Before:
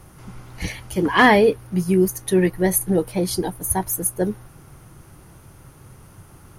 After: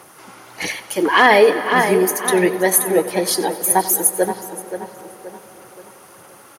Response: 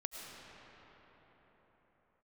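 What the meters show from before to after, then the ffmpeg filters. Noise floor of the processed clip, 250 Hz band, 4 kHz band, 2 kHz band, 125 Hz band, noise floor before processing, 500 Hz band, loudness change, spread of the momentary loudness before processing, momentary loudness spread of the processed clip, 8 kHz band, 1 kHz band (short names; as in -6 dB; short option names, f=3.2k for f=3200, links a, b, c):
-45 dBFS, -1.5 dB, +5.5 dB, +5.0 dB, -7.0 dB, -48 dBFS, +4.0 dB, +4.0 dB, 13 LU, 17 LU, +7.0 dB, +5.5 dB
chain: -filter_complex "[0:a]aphaser=in_gain=1:out_gain=1:delay=3.7:decay=0.32:speed=1.6:type=sinusoidal,highpass=440,asplit=2[a][b];[b]adelay=526,lowpass=f=3.9k:p=1,volume=-10dB,asplit=2[c][d];[d]adelay=526,lowpass=f=3.9k:p=1,volume=0.42,asplit=2[e][f];[f]adelay=526,lowpass=f=3.9k:p=1,volume=0.42,asplit=2[g][h];[h]adelay=526,lowpass=f=3.9k:p=1,volume=0.42[i];[a][c][e][g][i]amix=inputs=5:normalize=0,asplit=2[j][k];[1:a]atrim=start_sample=2205,adelay=92[l];[k][l]afir=irnorm=-1:irlink=0,volume=-13dB[m];[j][m]amix=inputs=2:normalize=0,alimiter=level_in=8dB:limit=-1dB:release=50:level=0:latency=1,volume=-1dB"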